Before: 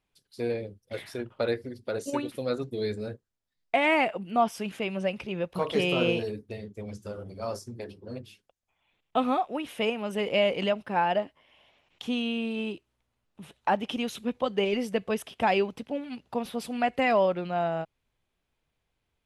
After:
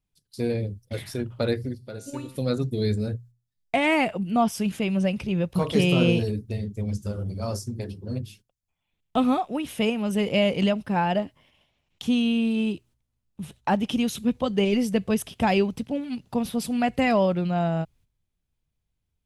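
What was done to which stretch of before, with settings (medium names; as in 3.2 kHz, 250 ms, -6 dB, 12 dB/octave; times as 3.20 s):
1.75–2.36 s: feedback comb 130 Hz, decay 0.85 s, mix 70%
whole clip: gate -59 dBFS, range -11 dB; tone controls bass +15 dB, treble +9 dB; hum notches 60/120 Hz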